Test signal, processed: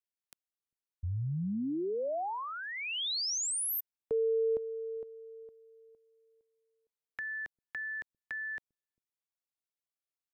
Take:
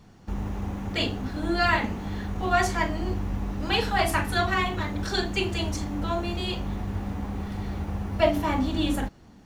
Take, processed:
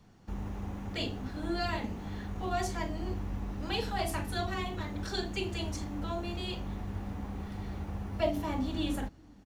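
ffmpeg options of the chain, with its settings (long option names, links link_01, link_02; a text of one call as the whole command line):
ffmpeg -i in.wav -filter_complex "[0:a]acrossover=split=380|850|2800[link_01][link_02][link_03][link_04];[link_01]aecho=1:1:398:0.0668[link_05];[link_03]acompressor=threshold=-37dB:ratio=6[link_06];[link_05][link_02][link_06][link_04]amix=inputs=4:normalize=0,volume=-7dB" out.wav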